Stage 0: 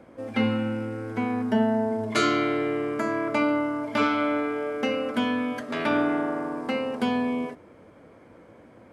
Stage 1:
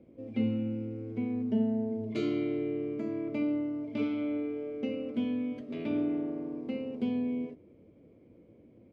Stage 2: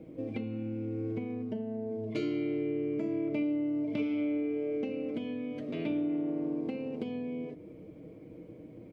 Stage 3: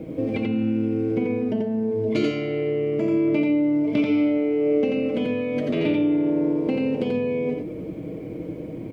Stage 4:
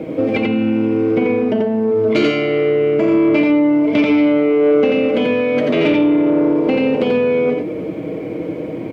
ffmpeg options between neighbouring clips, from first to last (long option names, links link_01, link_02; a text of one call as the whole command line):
ffmpeg -i in.wav -af "firequalizer=gain_entry='entry(370,0);entry(840,-18);entry(1600,-24);entry(2300,-9);entry(7000,-21);entry(11000,-27)':delay=0.05:min_phase=1,volume=-4.5dB" out.wav
ffmpeg -i in.wav -af "acompressor=threshold=-40dB:ratio=6,aecho=1:1:6.4:0.5,volume=8dB" out.wav
ffmpeg -i in.wav -filter_complex "[0:a]asplit=2[link_01][link_02];[link_02]alimiter=level_in=8dB:limit=-24dB:level=0:latency=1,volume=-8dB,volume=1.5dB[link_03];[link_01][link_03]amix=inputs=2:normalize=0,aecho=1:1:87:0.708,volume=7dB" out.wav
ffmpeg -i in.wav -filter_complex "[0:a]asplit=2[link_01][link_02];[link_02]highpass=frequency=720:poles=1,volume=14dB,asoftclip=type=tanh:threshold=-10.5dB[link_03];[link_01][link_03]amix=inputs=2:normalize=0,lowpass=frequency=2600:poles=1,volume=-6dB,highpass=55,volume=6.5dB" out.wav